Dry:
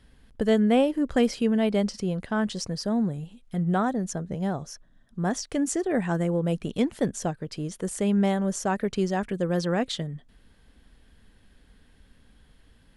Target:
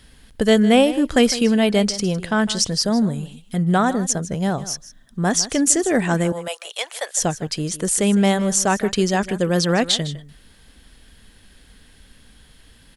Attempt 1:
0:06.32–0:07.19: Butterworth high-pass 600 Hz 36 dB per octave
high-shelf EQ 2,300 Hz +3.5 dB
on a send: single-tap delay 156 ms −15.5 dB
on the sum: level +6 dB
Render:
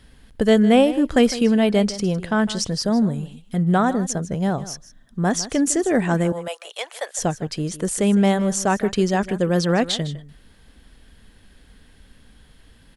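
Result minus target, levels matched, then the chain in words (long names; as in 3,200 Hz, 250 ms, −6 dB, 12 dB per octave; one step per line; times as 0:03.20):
4,000 Hz band −4.0 dB
0:06.32–0:07.19: Butterworth high-pass 600 Hz 36 dB per octave
high-shelf EQ 2,300 Hz +10.5 dB
on a send: single-tap delay 156 ms −15.5 dB
on the sum: level +6 dB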